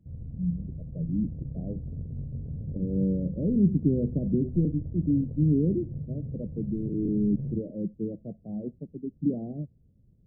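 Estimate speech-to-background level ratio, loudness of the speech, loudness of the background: 9.0 dB, -29.0 LUFS, -38.0 LUFS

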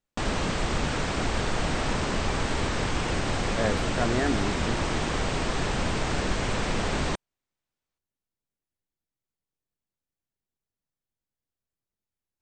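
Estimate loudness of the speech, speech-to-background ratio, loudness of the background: -31.5 LUFS, -3.0 dB, -28.5 LUFS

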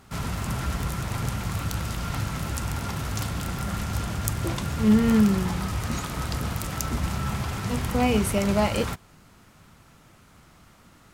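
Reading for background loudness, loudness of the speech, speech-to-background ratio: -29.5 LUFS, -23.5 LUFS, 6.0 dB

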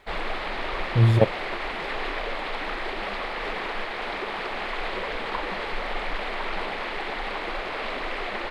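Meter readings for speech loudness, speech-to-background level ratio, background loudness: -21.5 LUFS, 9.0 dB, -30.5 LUFS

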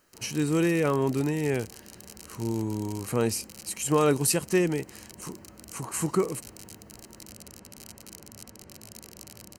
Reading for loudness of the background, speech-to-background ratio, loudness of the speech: -45.5 LUFS, 18.5 dB, -27.0 LUFS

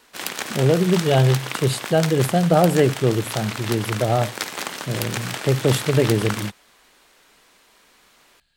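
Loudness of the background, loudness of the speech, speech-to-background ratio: -29.0 LUFS, -20.5 LUFS, 8.5 dB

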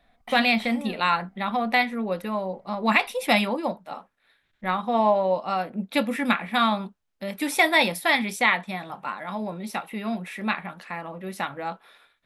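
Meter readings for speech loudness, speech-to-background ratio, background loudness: -24.5 LUFS, 15.0 dB, -39.5 LUFS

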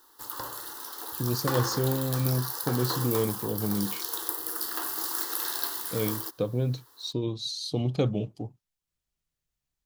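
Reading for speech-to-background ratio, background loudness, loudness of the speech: 1.5 dB, -31.5 LUFS, -30.0 LUFS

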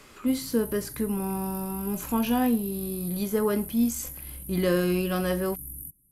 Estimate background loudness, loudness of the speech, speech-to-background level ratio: -38.0 LUFS, -28.0 LUFS, 10.0 dB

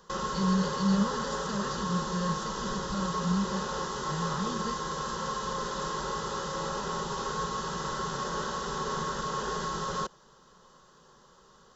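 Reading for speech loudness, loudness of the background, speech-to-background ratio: -33.0 LUFS, -33.0 LUFS, 0.0 dB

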